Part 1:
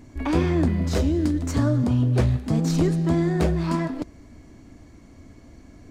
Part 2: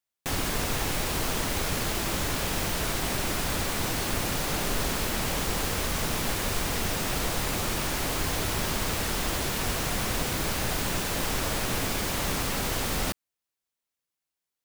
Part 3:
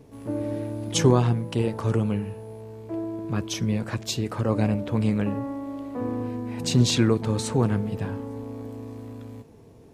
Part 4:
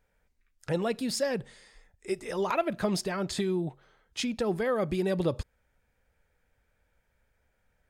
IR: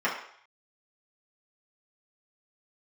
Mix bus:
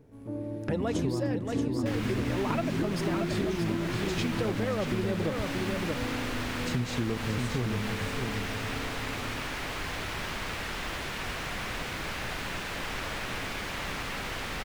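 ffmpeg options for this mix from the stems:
-filter_complex "[0:a]equalizer=f=280:w=0.92:g=13,volume=-14.5dB,asplit=2[a][b];[b]volume=-5dB[c];[1:a]equalizer=f=2.1k:w=0.62:g=8,highshelf=f=6.5k:g=-11,adelay=1600,volume=-8dB[d];[2:a]tiltshelf=f=770:g=4,volume=-9.5dB,asplit=2[e][f];[f]volume=-7dB[g];[3:a]equalizer=f=8.2k:w=0.62:g=-7.5,volume=1.5dB,asplit=3[h][i][j];[i]volume=-7dB[k];[j]apad=whole_len=260343[l];[a][l]sidechaingate=range=-24dB:threshold=-55dB:ratio=16:detection=peak[m];[c][g][k]amix=inputs=3:normalize=0,aecho=0:1:629:1[n];[m][d][e][h][n]amix=inputs=5:normalize=0,acompressor=threshold=-25dB:ratio=12"

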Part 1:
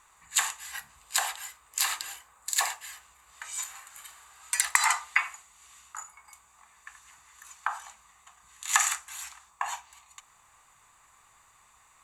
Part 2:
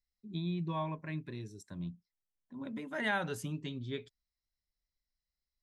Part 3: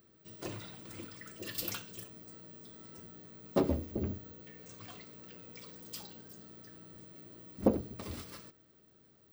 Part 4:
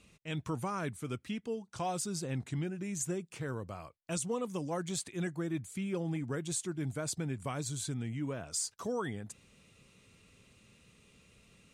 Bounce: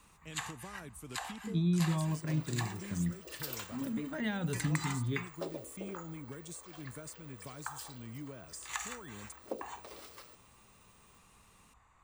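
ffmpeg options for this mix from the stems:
-filter_complex "[0:a]lowpass=f=1.6k:p=1,volume=-4dB[a];[1:a]adelay=1200,volume=-1.5dB[b];[2:a]highpass=f=450:w=0.5412,highpass=f=450:w=1.3066,adelay=1850,volume=-4dB[c];[3:a]aemphasis=mode=production:type=bsi,acompressor=threshold=-41dB:ratio=6,volume=-6.5dB,asplit=3[d][e][f];[d]atrim=end=3.76,asetpts=PTS-STARTPTS,afade=t=out:st=3.756:d=0.004:c=hsin[g];[e]atrim=start=3.76:end=4.31,asetpts=PTS-STARTPTS,volume=0[h];[f]atrim=start=4.31,asetpts=PTS-STARTPTS,afade=t=in:d=0.004:c=hsin[i];[g][h][i]concat=n=3:v=0:a=1[j];[a][b][c][j]amix=inputs=4:normalize=0,lowshelf=f=300:g=11.5,acrossover=split=290|3000[k][l][m];[l]acompressor=threshold=-39dB:ratio=6[n];[k][n][m]amix=inputs=3:normalize=0"

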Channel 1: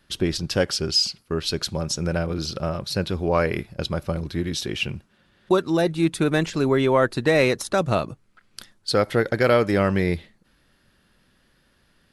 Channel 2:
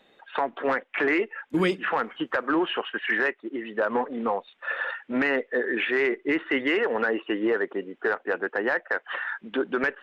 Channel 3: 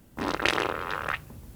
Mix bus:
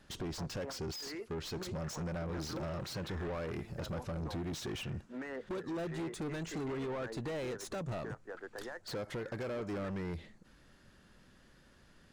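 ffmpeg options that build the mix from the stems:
-filter_complex "[0:a]acompressor=threshold=-28dB:ratio=10,volume=1dB,asplit=2[a][b];[1:a]highshelf=f=3.4k:g=-10.5,aeval=exprs='0.237*(cos(1*acos(clip(val(0)/0.237,-1,1)))-cos(1*PI/2))+0.015*(cos(7*acos(clip(val(0)/0.237,-1,1)))-cos(7*PI/2))':c=same,volume=-6dB[c];[2:a]acompressor=threshold=-36dB:ratio=6,adelay=2400,volume=-9dB[d];[b]apad=whole_len=442231[e];[c][e]sidechaincompress=threshold=-35dB:ratio=8:attack=6.4:release=1290[f];[a][f][d]amix=inputs=3:normalize=0,equalizer=f=6.9k:w=1.6:g=10.5,asoftclip=type=tanh:threshold=-35dB,highshelf=f=2.9k:g=-10"

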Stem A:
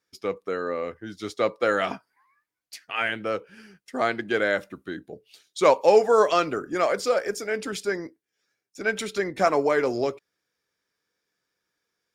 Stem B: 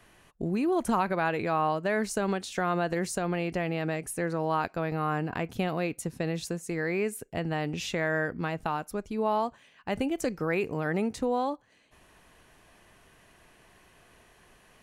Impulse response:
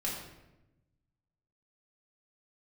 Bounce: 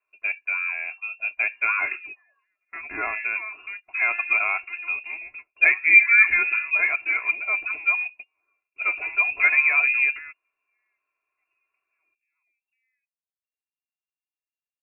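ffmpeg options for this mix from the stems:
-filter_complex "[0:a]volume=-5dB,asplit=2[a][b];[1:a]equalizer=f=190:w=2.2:g=-12.5,flanger=delay=3.4:depth=2.3:regen=-79:speed=1.6:shape=triangular,adelay=1500,volume=-8.5dB[c];[b]apad=whole_len=719744[d];[c][d]sidechaingate=range=-42dB:threshold=-57dB:ratio=16:detection=peak[e];[a][e]amix=inputs=2:normalize=0,lowshelf=f=430:g=11.5,lowpass=f=2.4k:t=q:w=0.5098,lowpass=f=2.4k:t=q:w=0.6013,lowpass=f=2.4k:t=q:w=0.9,lowpass=f=2.4k:t=q:w=2.563,afreqshift=-2800,aecho=1:1:2.9:0.79"

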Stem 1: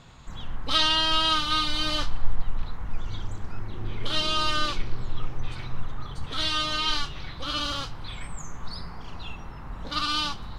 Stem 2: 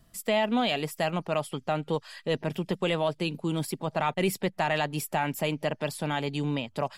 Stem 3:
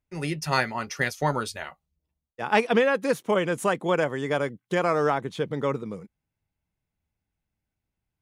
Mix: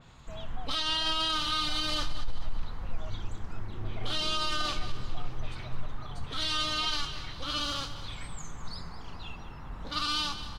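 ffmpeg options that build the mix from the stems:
-filter_complex "[0:a]adynamicequalizer=threshold=0.0178:dfrequency=4100:dqfactor=0.7:tfrequency=4100:tqfactor=0.7:attack=5:release=100:ratio=0.375:range=2:mode=boostabove:tftype=highshelf,volume=-4dB,asplit=2[a][b];[b]volume=-13dB[c];[1:a]asplit=3[d][e][f];[d]bandpass=f=730:t=q:w=8,volume=0dB[g];[e]bandpass=f=1.09k:t=q:w=8,volume=-6dB[h];[f]bandpass=f=2.44k:t=q:w=8,volume=-9dB[i];[g][h][i]amix=inputs=3:normalize=0,volume=-14.5dB[j];[c]aecho=0:1:205|410|615|820|1025|1230:1|0.43|0.185|0.0795|0.0342|0.0147[k];[a][j][k]amix=inputs=3:normalize=0,alimiter=limit=-20.5dB:level=0:latency=1:release=21"

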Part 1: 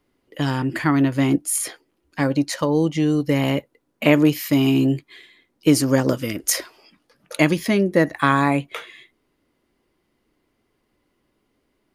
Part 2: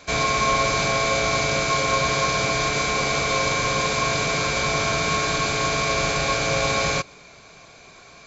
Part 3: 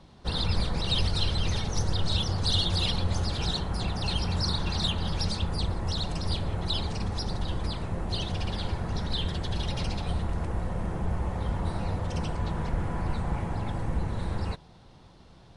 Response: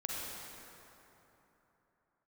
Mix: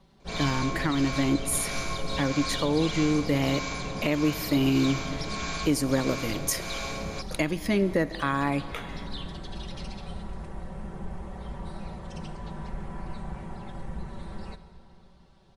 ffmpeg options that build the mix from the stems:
-filter_complex "[0:a]volume=-5dB,asplit=2[a][b];[b]volume=-17.5dB[c];[1:a]acrossover=split=650[d][e];[d]aeval=exprs='val(0)*(1-0.7/2+0.7/2*cos(2*PI*1.6*n/s))':c=same[f];[e]aeval=exprs='val(0)*(1-0.7/2-0.7/2*cos(2*PI*1.6*n/s))':c=same[g];[f][g]amix=inputs=2:normalize=0,adelay=200,volume=-9.5dB[h];[2:a]aecho=1:1:5.2:0.68,asoftclip=type=hard:threshold=-16dB,volume=-10dB,asplit=2[i][j];[j]volume=-11.5dB[k];[3:a]atrim=start_sample=2205[l];[c][k]amix=inputs=2:normalize=0[m];[m][l]afir=irnorm=-1:irlink=0[n];[a][h][i][n]amix=inputs=4:normalize=0,alimiter=limit=-13.5dB:level=0:latency=1:release=458"

